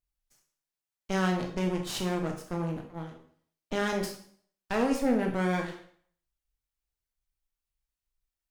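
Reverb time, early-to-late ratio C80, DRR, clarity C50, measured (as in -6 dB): 0.55 s, 11.0 dB, 2.0 dB, 7.0 dB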